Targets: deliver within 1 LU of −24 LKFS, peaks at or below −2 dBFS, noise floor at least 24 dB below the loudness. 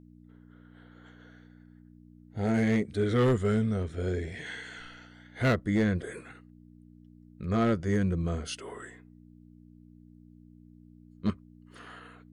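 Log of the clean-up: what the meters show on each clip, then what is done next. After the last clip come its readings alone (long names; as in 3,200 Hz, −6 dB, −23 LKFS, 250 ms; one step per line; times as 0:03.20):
share of clipped samples 0.8%; peaks flattened at −19.5 dBFS; mains hum 60 Hz; hum harmonics up to 300 Hz; level of the hum −54 dBFS; integrated loudness −29.5 LKFS; sample peak −19.5 dBFS; target loudness −24.0 LKFS
→ clipped peaks rebuilt −19.5 dBFS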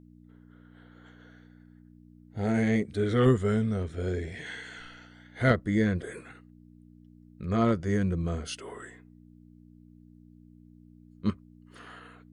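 share of clipped samples 0.0%; mains hum 60 Hz; hum harmonics up to 300 Hz; level of the hum −54 dBFS
→ hum removal 60 Hz, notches 5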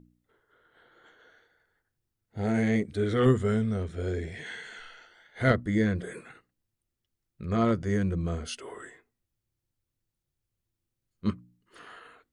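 mains hum none found; integrated loudness −28.5 LKFS; sample peak −10.5 dBFS; target loudness −24.0 LKFS
→ level +4.5 dB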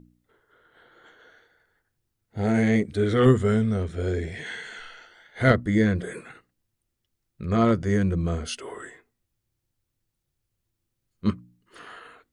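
integrated loudness −24.0 LKFS; sample peak −6.0 dBFS; background noise floor −80 dBFS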